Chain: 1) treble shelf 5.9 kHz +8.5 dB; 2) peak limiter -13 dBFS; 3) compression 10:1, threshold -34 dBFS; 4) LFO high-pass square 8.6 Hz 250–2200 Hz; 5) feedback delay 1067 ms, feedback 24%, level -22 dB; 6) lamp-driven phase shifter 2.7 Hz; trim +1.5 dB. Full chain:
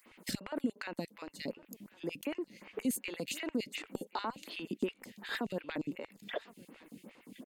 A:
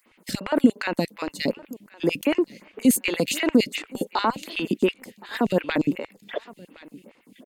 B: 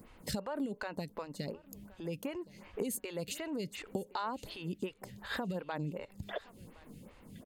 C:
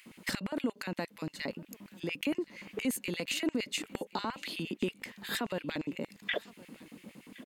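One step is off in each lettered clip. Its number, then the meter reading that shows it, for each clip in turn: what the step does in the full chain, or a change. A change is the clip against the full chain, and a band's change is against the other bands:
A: 3, momentary loudness spread change -1 LU; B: 4, 125 Hz band +7.5 dB; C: 6, loudness change +3.5 LU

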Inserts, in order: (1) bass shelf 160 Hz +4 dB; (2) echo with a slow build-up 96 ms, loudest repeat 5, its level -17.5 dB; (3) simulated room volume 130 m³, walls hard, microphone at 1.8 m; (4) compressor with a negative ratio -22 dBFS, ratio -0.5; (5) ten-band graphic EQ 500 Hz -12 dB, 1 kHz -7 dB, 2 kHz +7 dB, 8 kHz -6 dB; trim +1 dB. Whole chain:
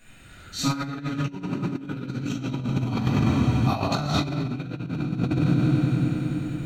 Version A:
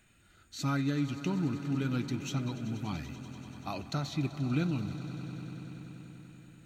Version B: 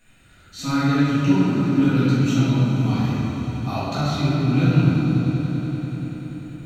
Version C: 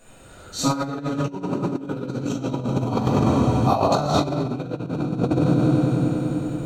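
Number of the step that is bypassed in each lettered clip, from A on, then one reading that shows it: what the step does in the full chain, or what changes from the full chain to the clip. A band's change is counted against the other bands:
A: 3, momentary loudness spread change +6 LU; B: 4, 8 kHz band -5.0 dB; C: 5, 500 Hz band +8.0 dB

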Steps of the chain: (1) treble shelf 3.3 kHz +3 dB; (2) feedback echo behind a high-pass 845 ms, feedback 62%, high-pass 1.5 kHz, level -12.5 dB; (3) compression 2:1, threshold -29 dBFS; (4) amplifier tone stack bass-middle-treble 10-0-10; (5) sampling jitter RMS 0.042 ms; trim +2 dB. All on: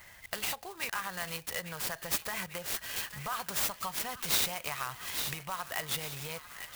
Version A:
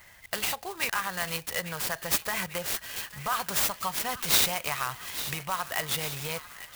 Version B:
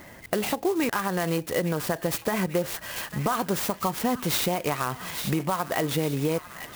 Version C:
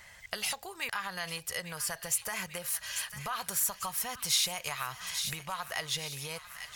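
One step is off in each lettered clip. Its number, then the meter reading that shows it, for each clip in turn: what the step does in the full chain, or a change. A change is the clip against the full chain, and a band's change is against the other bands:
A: 3, mean gain reduction 4.5 dB; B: 4, 250 Hz band +14.0 dB; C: 5, 8 kHz band +4.0 dB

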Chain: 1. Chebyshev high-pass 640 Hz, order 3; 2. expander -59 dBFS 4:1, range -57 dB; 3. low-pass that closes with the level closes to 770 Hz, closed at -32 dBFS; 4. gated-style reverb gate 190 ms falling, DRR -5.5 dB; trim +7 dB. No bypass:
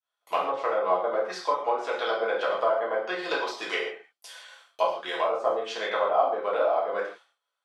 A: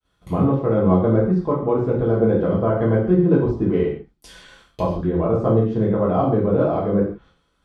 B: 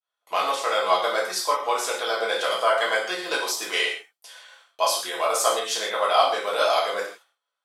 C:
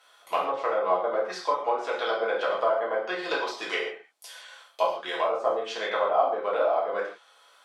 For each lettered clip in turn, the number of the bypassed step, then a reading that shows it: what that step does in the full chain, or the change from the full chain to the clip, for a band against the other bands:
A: 1, 250 Hz band +26.5 dB; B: 3, 8 kHz band +17.0 dB; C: 2, momentary loudness spread change +2 LU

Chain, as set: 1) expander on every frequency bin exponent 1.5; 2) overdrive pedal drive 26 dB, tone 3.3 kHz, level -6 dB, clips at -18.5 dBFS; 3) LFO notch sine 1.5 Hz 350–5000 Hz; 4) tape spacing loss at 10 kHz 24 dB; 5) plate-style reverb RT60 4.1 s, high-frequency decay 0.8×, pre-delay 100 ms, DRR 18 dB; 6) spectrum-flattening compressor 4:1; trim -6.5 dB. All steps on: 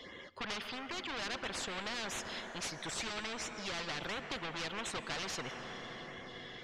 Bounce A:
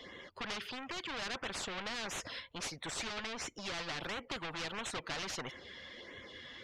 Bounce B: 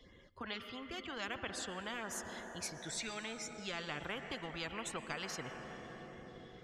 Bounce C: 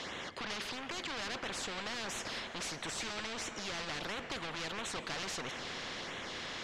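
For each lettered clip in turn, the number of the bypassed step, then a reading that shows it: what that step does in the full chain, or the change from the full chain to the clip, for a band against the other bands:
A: 5, momentary loudness spread change +3 LU; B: 2, crest factor change +2.0 dB; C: 1, momentary loudness spread change -4 LU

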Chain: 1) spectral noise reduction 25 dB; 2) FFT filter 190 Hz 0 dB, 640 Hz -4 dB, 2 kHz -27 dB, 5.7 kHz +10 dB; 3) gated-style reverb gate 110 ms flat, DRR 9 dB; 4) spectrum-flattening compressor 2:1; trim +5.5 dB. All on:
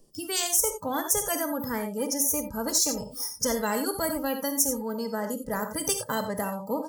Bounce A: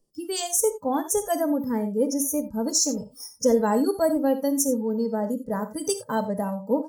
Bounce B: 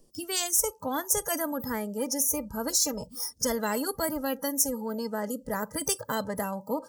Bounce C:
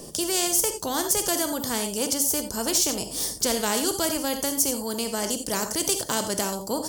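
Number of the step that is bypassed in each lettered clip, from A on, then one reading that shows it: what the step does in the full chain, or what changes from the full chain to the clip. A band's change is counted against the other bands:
4, 250 Hz band +7.5 dB; 3, loudness change -1.5 LU; 1, 4 kHz band +4.5 dB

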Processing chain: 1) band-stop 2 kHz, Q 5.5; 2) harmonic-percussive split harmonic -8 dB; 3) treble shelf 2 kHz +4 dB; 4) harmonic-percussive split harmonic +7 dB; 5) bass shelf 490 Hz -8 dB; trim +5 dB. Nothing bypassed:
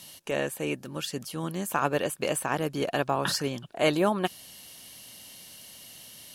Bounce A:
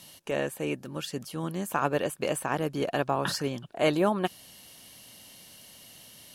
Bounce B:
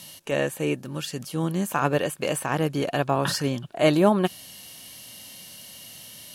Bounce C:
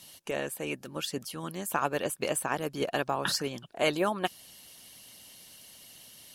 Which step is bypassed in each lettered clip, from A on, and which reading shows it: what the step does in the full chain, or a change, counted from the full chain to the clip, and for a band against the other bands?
3, momentary loudness spread change +3 LU; 2, 125 Hz band +5.0 dB; 4, 125 Hz band -4.0 dB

